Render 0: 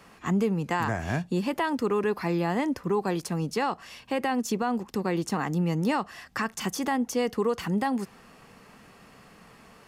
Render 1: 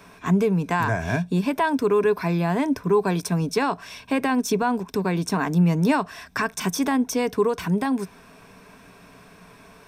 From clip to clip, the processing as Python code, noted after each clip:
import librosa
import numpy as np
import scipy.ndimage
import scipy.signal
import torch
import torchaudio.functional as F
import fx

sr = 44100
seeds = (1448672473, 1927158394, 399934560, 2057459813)

y = fx.rider(x, sr, range_db=10, speed_s=2.0)
y = fx.ripple_eq(y, sr, per_octave=1.6, db=9)
y = F.gain(torch.from_numpy(y), 3.5).numpy()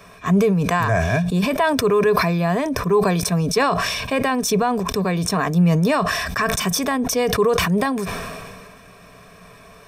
y = x + 0.51 * np.pad(x, (int(1.7 * sr / 1000.0), 0))[:len(x)]
y = fx.sustainer(y, sr, db_per_s=28.0)
y = F.gain(torch.from_numpy(y), 2.5).numpy()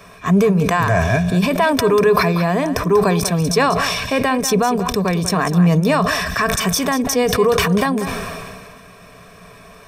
y = x + 10.0 ** (-11.0 / 20.0) * np.pad(x, (int(191 * sr / 1000.0), 0))[:len(x)]
y = F.gain(torch.from_numpy(y), 2.5).numpy()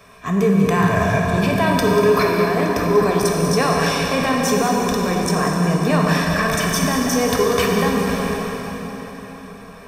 y = fx.rev_plate(x, sr, seeds[0], rt60_s=4.6, hf_ratio=0.75, predelay_ms=0, drr_db=-1.5)
y = F.gain(torch.from_numpy(y), -5.0).numpy()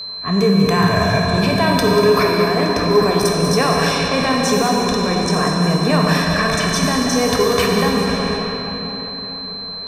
y = fx.env_lowpass(x, sr, base_hz=1500.0, full_db=-13.0)
y = y + 10.0 ** (-28.0 / 20.0) * np.sin(2.0 * np.pi * 4100.0 * np.arange(len(y)) / sr)
y = F.gain(torch.from_numpy(y), 1.5).numpy()